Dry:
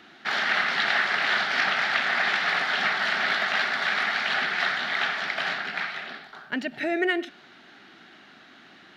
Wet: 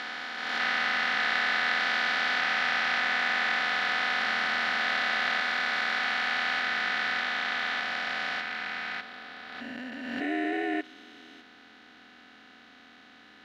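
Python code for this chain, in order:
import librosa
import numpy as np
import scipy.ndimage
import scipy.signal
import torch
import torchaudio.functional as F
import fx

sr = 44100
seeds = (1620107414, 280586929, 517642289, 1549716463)

y = fx.spec_steps(x, sr, hold_ms=400)
y = fx.stretch_grains(y, sr, factor=1.5, grain_ms=24.0)
y = fx.pre_swell(y, sr, db_per_s=35.0)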